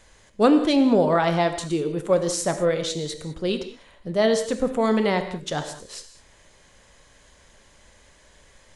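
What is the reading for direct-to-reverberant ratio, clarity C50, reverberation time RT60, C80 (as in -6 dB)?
7.5 dB, 9.5 dB, no single decay rate, 11.0 dB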